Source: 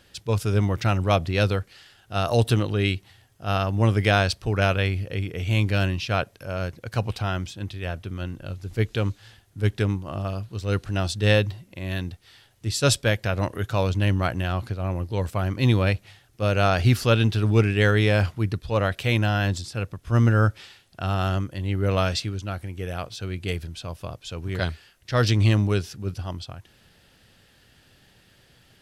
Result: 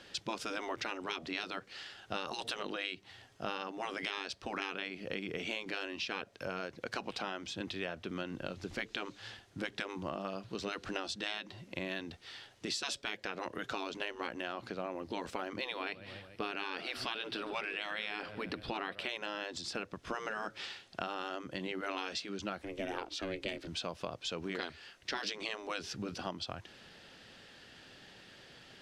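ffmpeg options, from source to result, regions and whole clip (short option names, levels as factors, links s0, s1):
-filter_complex "[0:a]asettb=1/sr,asplit=3[s0][s1][s2];[s0]atrim=end=15.614[s3];[s1]atrim=start=15.61:end=19.09,asetpts=PTS-STARTPTS,afade=t=in:d=0.004:c=qsin,afade=t=out:st=3.476:d=0.004:c=qsin,equalizer=f=6600:w=3.5:g=-12.5,aecho=1:1:144|288|432:0.0668|0.0334|0.0167,atrim=end_sample=153468[s4];[s2]atrim=start=19.086[s5];[s3][s4]acrossfade=d=0.004:c1=hsin:c2=qsin[s6];[s6][s5]acrossfade=d=0.004:c1=qsin:c2=hsin,asettb=1/sr,asplit=3[s7][s8][s9];[s7]atrim=end=22.624[s10];[s8]atrim=start=22.62:end=23.67,asetpts=PTS-STARTPTS,afade=t=in:d=0.004:c=qsin,afade=t=out:st=1.046:d=0.004:c=qsin,highpass=f=120:w=0.5412,highpass=f=120:w=1.3066,aeval=exprs='val(0)*sin(2*PI*190*n/s)':c=same[s11];[s9]atrim=start=23.666[s12];[s10][s11]acrossfade=d=0.004:c1=hsin:c2=qsin[s13];[s13][s12]acrossfade=d=0.004:c1=qsin:c2=hsin,afftfilt=real='re*lt(hypot(re,im),0.2)':imag='im*lt(hypot(re,im),0.2)':win_size=1024:overlap=0.75,acrossover=split=190 7200:gain=0.224 1 0.112[s14][s15][s16];[s14][s15][s16]amix=inputs=3:normalize=0,acompressor=threshold=0.0126:ratio=12,volume=1.5"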